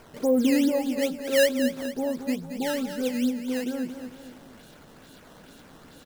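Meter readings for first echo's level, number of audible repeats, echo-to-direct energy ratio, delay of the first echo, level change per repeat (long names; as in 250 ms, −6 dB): −9.5 dB, 3, −8.5 dB, 226 ms, −6.5 dB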